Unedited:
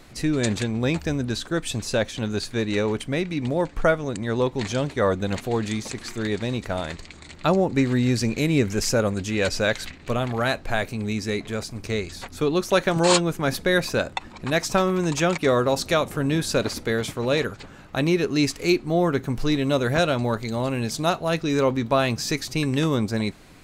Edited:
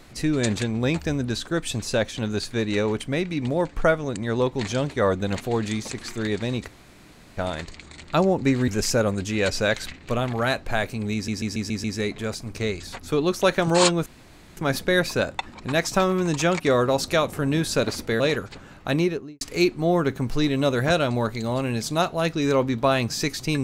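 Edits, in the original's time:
6.68 insert room tone 0.69 s
7.99–8.67 cut
11.13 stutter 0.14 s, 6 plays
13.35 insert room tone 0.51 s
16.98–17.28 cut
18.01–18.49 studio fade out

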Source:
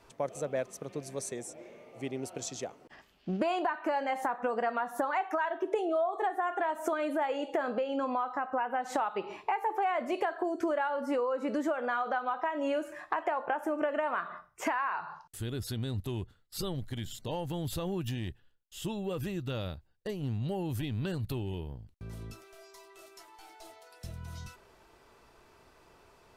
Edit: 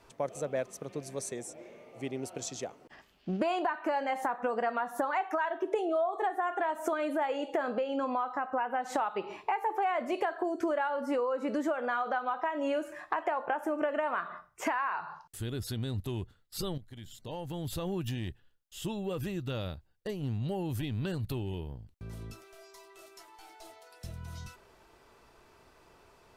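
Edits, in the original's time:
16.78–17.9 fade in, from -14 dB

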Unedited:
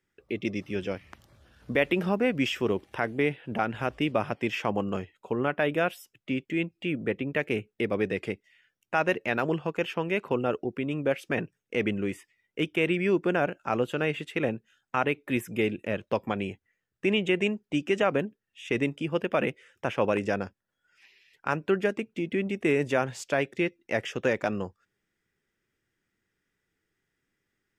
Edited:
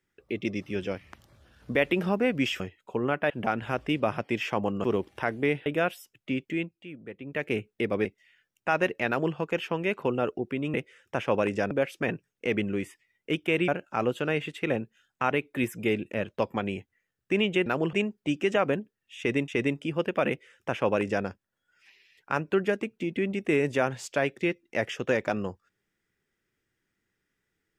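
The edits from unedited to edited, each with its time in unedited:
2.6–3.42 swap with 4.96–5.66
6.5–7.52 dip -13 dB, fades 0.34 s
8.05–8.31 cut
9.34–9.61 copy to 17.39
12.97–13.41 cut
18.64–18.94 loop, 2 plays
19.44–20.41 copy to 11

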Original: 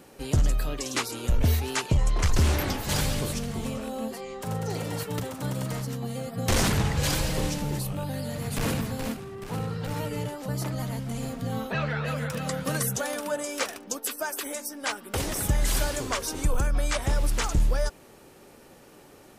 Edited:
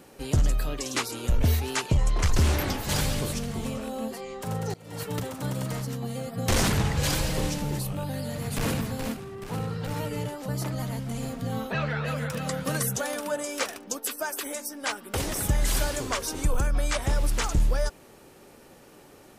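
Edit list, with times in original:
4.74–5.04 fade in quadratic, from -21.5 dB

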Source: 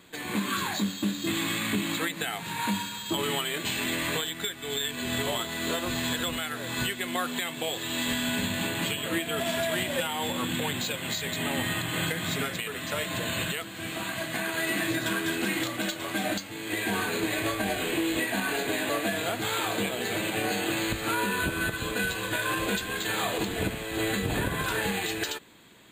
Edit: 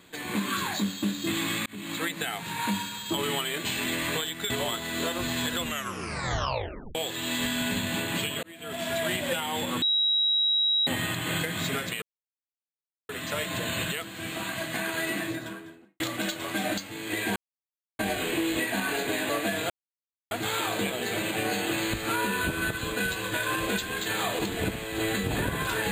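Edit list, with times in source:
1.66–2.07 fade in
4.5–5.17 cut
6.3 tape stop 1.32 s
9.1–9.68 fade in
10.49–11.54 bleep 3850 Hz -21 dBFS
12.69 insert silence 1.07 s
14.5–15.6 studio fade out
16.96–17.59 mute
19.3 insert silence 0.61 s

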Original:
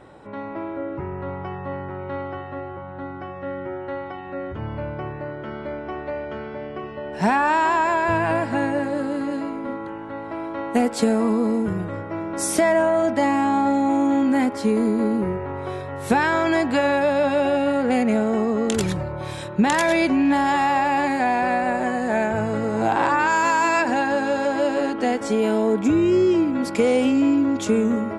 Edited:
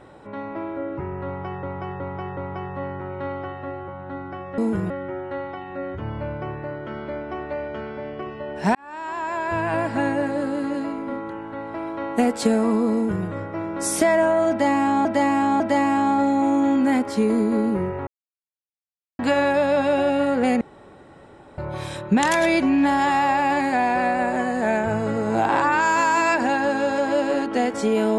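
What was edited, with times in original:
1.26–1.63 loop, 4 plays
7.32–8.56 fade in
11.51–11.83 copy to 3.47
13.07–13.62 loop, 3 plays
15.54–16.66 mute
18.08–19.05 room tone

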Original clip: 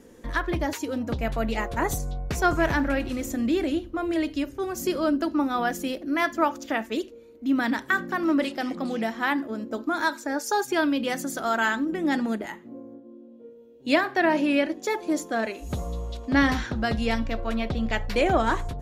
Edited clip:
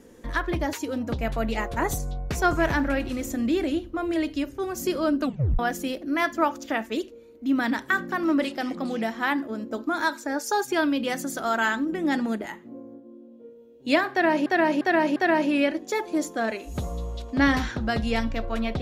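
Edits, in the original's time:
5.2 tape stop 0.39 s
14.11–14.46 loop, 4 plays

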